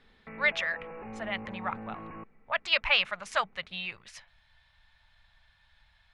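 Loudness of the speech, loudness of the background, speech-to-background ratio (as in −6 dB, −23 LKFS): −30.0 LKFS, −43.5 LKFS, 13.5 dB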